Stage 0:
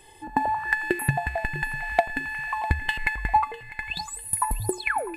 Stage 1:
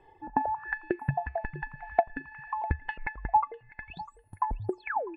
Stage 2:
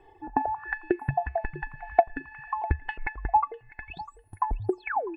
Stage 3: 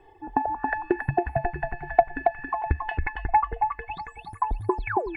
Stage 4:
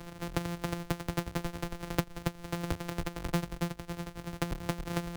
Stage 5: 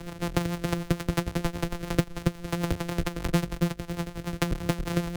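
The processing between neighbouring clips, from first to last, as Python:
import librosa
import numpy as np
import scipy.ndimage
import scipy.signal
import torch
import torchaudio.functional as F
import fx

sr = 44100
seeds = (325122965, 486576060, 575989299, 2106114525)

y1 = fx.dereverb_blind(x, sr, rt60_s=1.4)
y1 = scipy.signal.sosfilt(scipy.signal.butter(2, 1100.0, 'lowpass', fs=sr, output='sos'), y1)
y1 = fx.low_shelf(y1, sr, hz=470.0, db=-5.5)
y2 = y1 + 0.43 * np.pad(y1, (int(2.7 * sr / 1000.0), 0))[:len(y1)]
y2 = y2 * 10.0 ** (2.0 / 20.0)
y3 = fx.echo_feedback(y2, sr, ms=276, feedback_pct=25, wet_db=-4.5)
y3 = y3 * 10.0 ** (1.5 / 20.0)
y4 = np.r_[np.sort(y3[:len(y3) // 256 * 256].reshape(-1, 256), axis=1).ravel(), y3[len(y3) // 256 * 256:]]
y4 = fx.band_squash(y4, sr, depth_pct=70)
y4 = y4 * 10.0 ** (-9.0 / 20.0)
y5 = fx.rotary(y4, sr, hz=6.7)
y5 = y5 * 10.0 ** (8.5 / 20.0)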